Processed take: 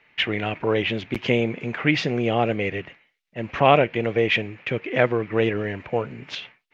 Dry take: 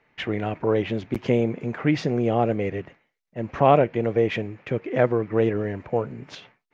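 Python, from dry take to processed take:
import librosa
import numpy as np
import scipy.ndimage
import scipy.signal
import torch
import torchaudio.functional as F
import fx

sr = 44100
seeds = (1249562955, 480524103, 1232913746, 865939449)

y = fx.peak_eq(x, sr, hz=2800.0, db=12.5, octaves=1.6)
y = y * 10.0 ** (-1.0 / 20.0)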